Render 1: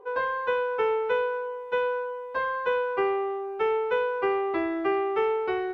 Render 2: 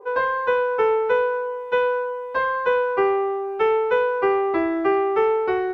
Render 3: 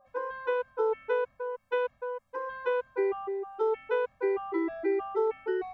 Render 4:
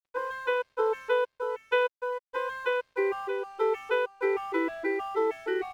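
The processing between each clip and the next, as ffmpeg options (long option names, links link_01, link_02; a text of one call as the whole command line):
ffmpeg -i in.wav -af "adynamicequalizer=threshold=0.00316:dfrequency=3100:dqfactor=1.5:tfrequency=3100:tqfactor=1.5:attack=5:release=100:ratio=0.375:range=3:mode=cutabove:tftype=bell,volume=6dB" out.wav
ffmpeg -i in.wav -filter_complex "[0:a]acrossover=split=450[link_01][link_02];[link_02]acompressor=threshold=-32dB:ratio=1.5[link_03];[link_01][link_03]amix=inputs=2:normalize=0,afftfilt=real='re*gt(sin(2*PI*3.2*pts/sr)*(1-2*mod(floor(b*sr/1024/260),2)),0)':imag='im*gt(sin(2*PI*3.2*pts/sr)*(1-2*mod(floor(b*sr/1024/260),2)),0)':win_size=1024:overlap=0.75,volume=-5.5dB" out.wav
ffmpeg -i in.wav -af "equalizer=frequency=3000:width_type=o:width=2.1:gain=9.5,aeval=exprs='sgn(val(0))*max(abs(val(0))-0.00211,0)':channel_layout=same,aecho=1:1:629:0.335" out.wav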